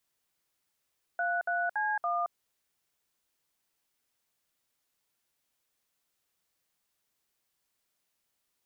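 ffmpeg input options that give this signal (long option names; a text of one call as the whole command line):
ffmpeg -f lavfi -i "aevalsrc='0.0316*clip(min(mod(t,0.283),0.222-mod(t,0.283))/0.002,0,1)*(eq(floor(t/0.283),0)*(sin(2*PI*697*mod(t,0.283))+sin(2*PI*1477*mod(t,0.283)))+eq(floor(t/0.283),1)*(sin(2*PI*697*mod(t,0.283))+sin(2*PI*1477*mod(t,0.283)))+eq(floor(t/0.283),2)*(sin(2*PI*852*mod(t,0.283))+sin(2*PI*1633*mod(t,0.283)))+eq(floor(t/0.283),3)*(sin(2*PI*697*mod(t,0.283))+sin(2*PI*1209*mod(t,0.283))))':duration=1.132:sample_rate=44100" out.wav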